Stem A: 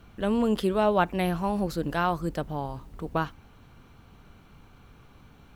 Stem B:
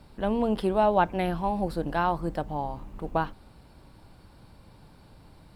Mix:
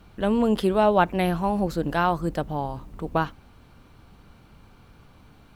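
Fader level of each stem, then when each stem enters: 0.0 dB, -5.5 dB; 0.00 s, 0.00 s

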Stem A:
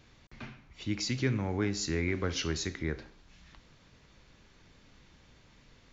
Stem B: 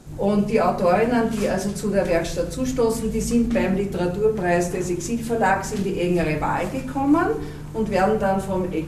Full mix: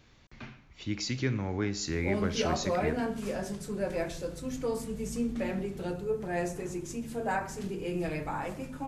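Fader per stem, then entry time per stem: -0.5 dB, -12.0 dB; 0.00 s, 1.85 s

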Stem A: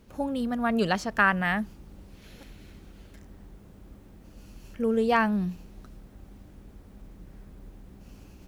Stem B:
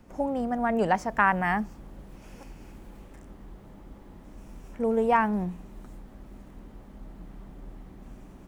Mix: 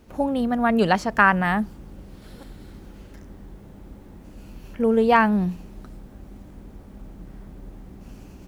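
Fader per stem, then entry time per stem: +2.0 dB, -2.0 dB; 0.00 s, 0.00 s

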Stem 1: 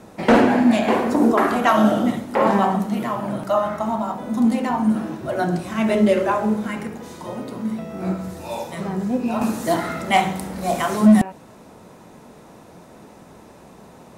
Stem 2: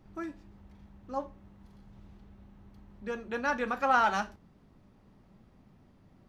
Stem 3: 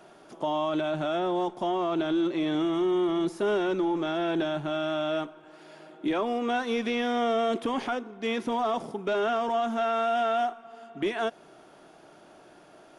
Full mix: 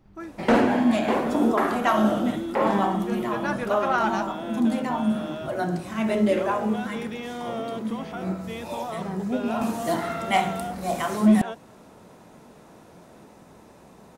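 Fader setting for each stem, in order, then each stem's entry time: -5.0 dB, +0.5 dB, -7.0 dB; 0.20 s, 0.00 s, 0.25 s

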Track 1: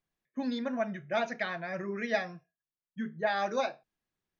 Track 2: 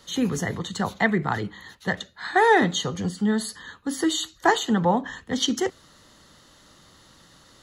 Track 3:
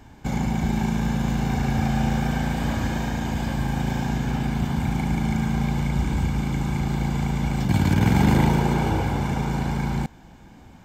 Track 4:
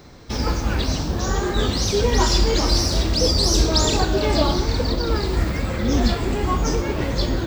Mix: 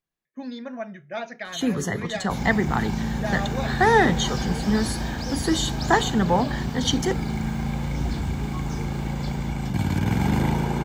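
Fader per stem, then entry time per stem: -1.5 dB, 0.0 dB, -4.0 dB, -16.0 dB; 0.00 s, 1.45 s, 2.05 s, 2.05 s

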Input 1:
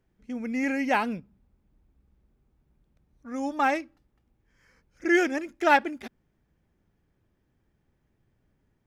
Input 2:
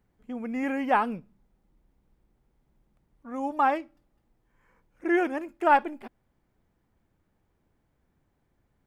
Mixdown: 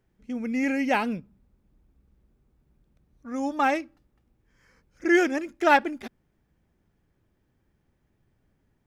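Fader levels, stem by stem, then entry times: +1.0 dB, -11.5 dB; 0.00 s, 0.00 s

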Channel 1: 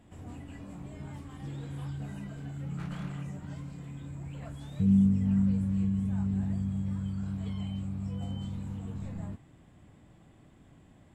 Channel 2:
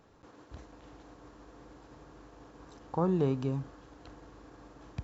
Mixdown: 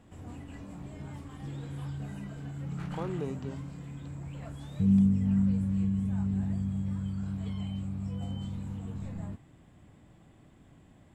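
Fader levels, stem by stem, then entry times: 0.0 dB, -7.0 dB; 0.00 s, 0.00 s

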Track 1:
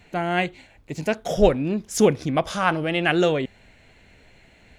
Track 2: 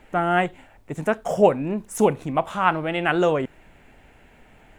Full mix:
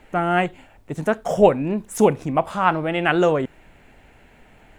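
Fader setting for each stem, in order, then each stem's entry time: -13.5 dB, +1.0 dB; 0.00 s, 0.00 s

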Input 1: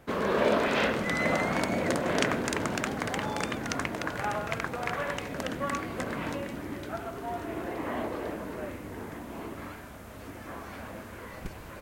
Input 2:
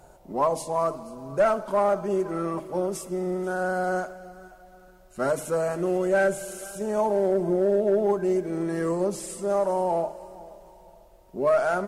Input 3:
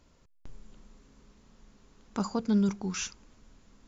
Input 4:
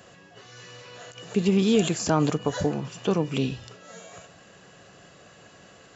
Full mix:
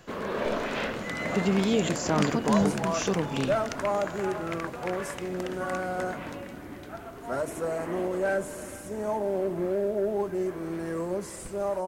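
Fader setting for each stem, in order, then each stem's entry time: -4.5 dB, -5.5 dB, +0.5 dB, -4.0 dB; 0.00 s, 2.10 s, 0.00 s, 0.00 s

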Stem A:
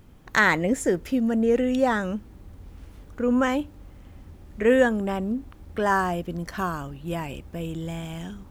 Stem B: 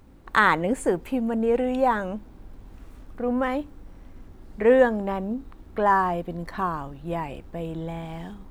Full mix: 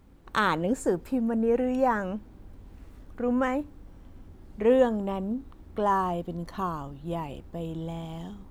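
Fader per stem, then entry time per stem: -12.0 dB, -5.0 dB; 0.00 s, 0.00 s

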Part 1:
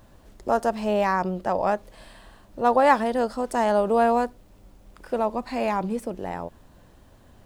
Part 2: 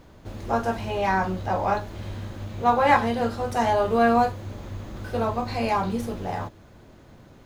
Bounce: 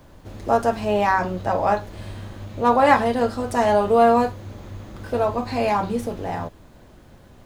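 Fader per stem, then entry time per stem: +1.0 dB, -1.0 dB; 0.00 s, 0.00 s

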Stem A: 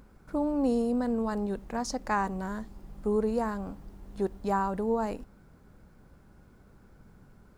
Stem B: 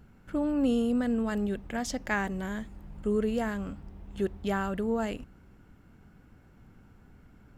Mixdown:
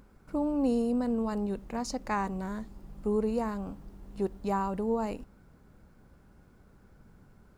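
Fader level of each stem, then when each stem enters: -2.0 dB, -14.5 dB; 0.00 s, 0.00 s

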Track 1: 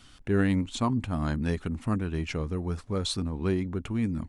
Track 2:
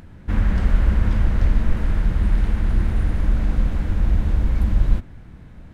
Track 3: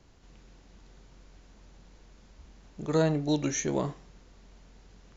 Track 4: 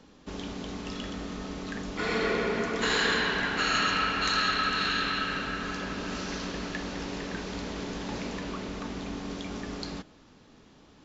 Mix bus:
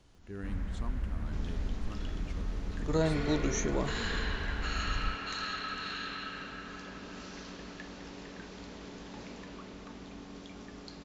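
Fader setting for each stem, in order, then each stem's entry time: -18.0 dB, -18.0 dB, -4.0 dB, -10.5 dB; 0.00 s, 0.15 s, 0.00 s, 1.05 s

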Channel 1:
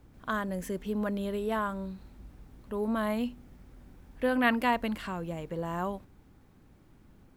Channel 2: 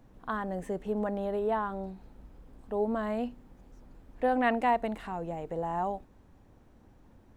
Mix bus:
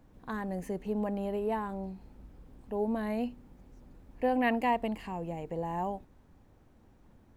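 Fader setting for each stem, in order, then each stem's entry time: -10.0 dB, -3.0 dB; 0.00 s, 0.00 s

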